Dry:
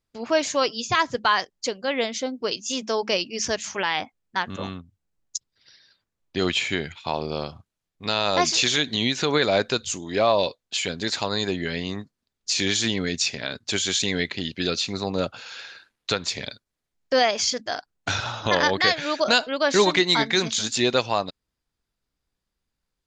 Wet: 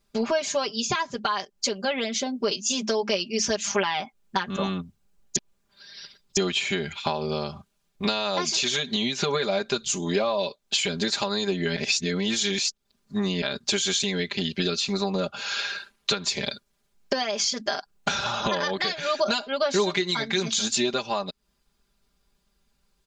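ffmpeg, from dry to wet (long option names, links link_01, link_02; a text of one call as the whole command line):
ffmpeg -i in.wav -filter_complex "[0:a]asplit=5[link_01][link_02][link_03][link_04][link_05];[link_01]atrim=end=5.362[link_06];[link_02]atrim=start=5.358:end=6.372,asetpts=PTS-STARTPTS,areverse[link_07];[link_03]atrim=start=6.368:end=11.762[link_08];[link_04]atrim=start=11.758:end=13.422,asetpts=PTS-STARTPTS,areverse[link_09];[link_05]atrim=start=13.418[link_10];[link_06][link_07]acrossfade=duration=0.004:curve1=hsin:curve2=hsin[link_11];[link_11][link_08]acrossfade=duration=0.004:curve1=hsin:curve2=hsin[link_12];[link_12][link_09]acrossfade=duration=0.004:curve1=hsin:curve2=hsin[link_13];[link_13][link_10]acrossfade=duration=0.004:curve1=hsin:curve2=hsin,acompressor=threshold=-33dB:ratio=10,equalizer=frequency=1900:width_type=o:width=0.23:gain=-4.5,aecho=1:1:5:0.9,volume=8.5dB" out.wav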